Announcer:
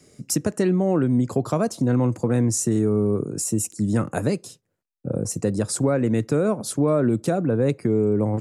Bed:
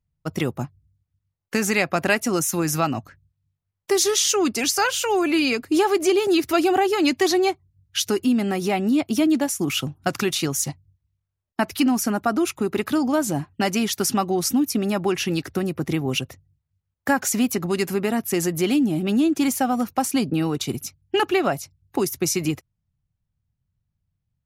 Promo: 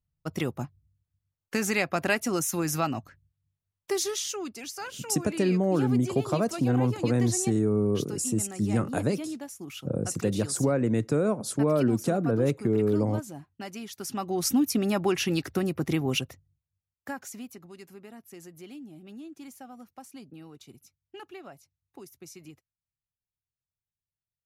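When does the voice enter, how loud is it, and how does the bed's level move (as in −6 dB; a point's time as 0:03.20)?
4.80 s, −4.0 dB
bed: 0:03.74 −5.5 dB
0:04.59 −17 dB
0:13.93 −17 dB
0:14.49 −3 dB
0:16.15 −3 dB
0:17.70 −24 dB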